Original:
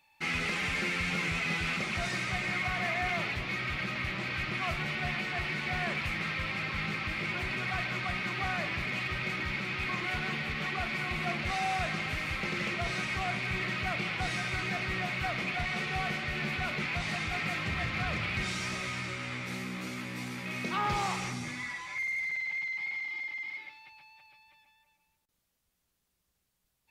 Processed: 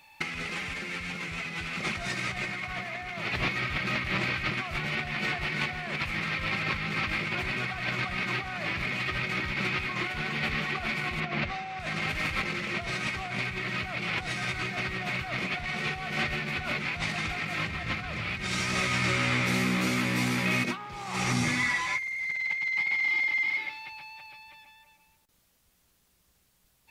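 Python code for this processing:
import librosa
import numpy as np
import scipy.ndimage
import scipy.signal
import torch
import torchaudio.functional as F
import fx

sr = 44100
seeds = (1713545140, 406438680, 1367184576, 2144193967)

y = fx.air_absorb(x, sr, metres=120.0, at=(11.2, 11.8))
y = fx.over_compress(y, sr, threshold_db=-37.0, ratio=-0.5)
y = y * 10.0 ** (7.0 / 20.0)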